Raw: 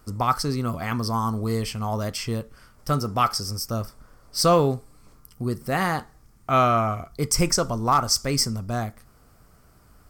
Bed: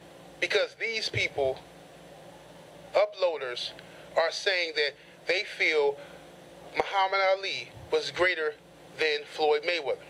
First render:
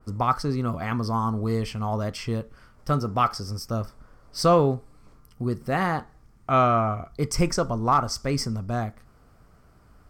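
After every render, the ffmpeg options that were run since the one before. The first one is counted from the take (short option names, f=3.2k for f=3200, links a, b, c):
-af "lowpass=f=2.9k:p=1,adynamicequalizer=threshold=0.0178:dfrequency=1900:dqfactor=0.7:tfrequency=1900:tqfactor=0.7:attack=5:release=100:ratio=0.375:range=3.5:mode=cutabove:tftype=highshelf"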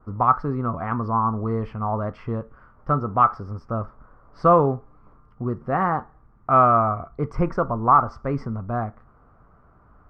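-af "lowpass=f=1.2k:t=q:w=2"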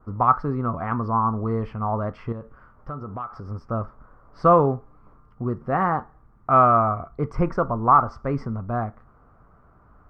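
-filter_complex "[0:a]asettb=1/sr,asplit=3[a][b][c];[a]atrim=end=2.324[d];[b]atrim=start=2.32:end=3.49,asetpts=PTS-STARTPTS,afade=t=in:d=0.004:c=qsin,afade=t=out:st=1.166:d=0.004:c=qsin,acompressor=threshold=-31dB:ratio=4:attack=3.2:release=140:knee=1:detection=peak[e];[c]atrim=start=3.486[f];[d][e]acrossfade=d=0.004:c1=hsin:c2=qsin[g];[g][f]acrossfade=d=0.004:c1=qsin:c2=hsin"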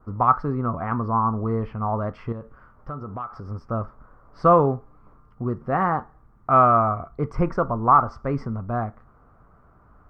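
-filter_complex "[0:a]asettb=1/sr,asplit=3[a][b][c];[a]atrim=end=0.524[d];[b]atrim=start=0.52:end=1.89,asetpts=PTS-STARTPTS,afade=t=in:d=0.004:c=qsin,afade=t=out:st=1.366:d=0.004:c=qsin,aemphasis=mode=reproduction:type=50fm[e];[c]atrim=start=1.886[f];[d][e]acrossfade=d=0.004:c1=hsin:c2=qsin[g];[g][f]acrossfade=d=0.004:c1=qsin:c2=hsin"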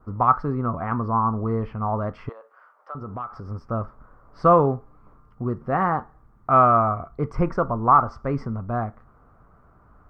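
-filter_complex "[0:a]asettb=1/sr,asplit=3[a][b][c];[a]atrim=end=2.294[d];[b]atrim=start=2.29:end=2.95,asetpts=PTS-STARTPTS,afade=t=in:d=0.004:c=qsin,afade=t=out:st=0.656:d=0.004:c=qsin,highpass=f=550:w=0.5412,highpass=f=550:w=1.3066[e];[c]atrim=start=2.946[f];[d][e]acrossfade=d=0.004:c1=hsin:c2=qsin[g];[g][f]acrossfade=d=0.004:c1=qsin:c2=hsin"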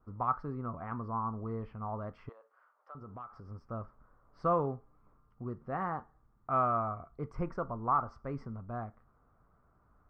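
-af "volume=-13.5dB"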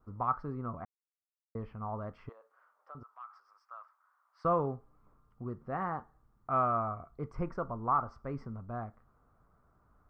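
-filter_complex "[0:a]asettb=1/sr,asplit=3[a][b][c];[a]atrim=end=3.034[d];[b]atrim=start=3.03:end=4.45,asetpts=PTS-STARTPTS,afade=t=in:d=0.004:c=qsin,afade=t=out:st=1.416:d=0.004:c=qsin,highpass=f=1k:w=0.5412,highpass=f=1k:w=1.3066[e];[c]atrim=start=4.446[f];[d][e]acrossfade=d=0.004:c1=hsin:c2=qsin[g];[g][f]acrossfade=d=0.004:c1=qsin:c2=hsin,asplit=3[h][i][j];[h]atrim=end=0.85,asetpts=PTS-STARTPTS,afade=t=out:st=0.846:d=0.004:c=hsin[k];[i]atrim=start=0.85:end=1.55,asetpts=PTS-STARTPTS,volume=0[l];[j]atrim=start=1.55,asetpts=PTS-STARTPTS,afade=t=in:d=0.004:c=hsin[m];[k][l][m]concat=n=3:v=0:a=1"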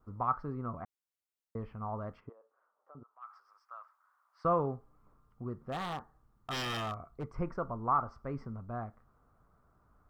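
-filter_complex "[0:a]asplit=3[a][b][c];[a]afade=t=out:st=2.19:d=0.02[d];[b]bandpass=f=300:t=q:w=0.66,afade=t=in:st=2.19:d=0.02,afade=t=out:st=3.21:d=0.02[e];[c]afade=t=in:st=3.21:d=0.02[f];[d][e][f]amix=inputs=3:normalize=0,asplit=3[g][h][i];[g]afade=t=out:st=5.52:d=0.02[j];[h]aeval=exprs='0.0282*(abs(mod(val(0)/0.0282+3,4)-2)-1)':c=same,afade=t=in:st=5.52:d=0.02,afade=t=out:st=7.23:d=0.02[k];[i]afade=t=in:st=7.23:d=0.02[l];[j][k][l]amix=inputs=3:normalize=0"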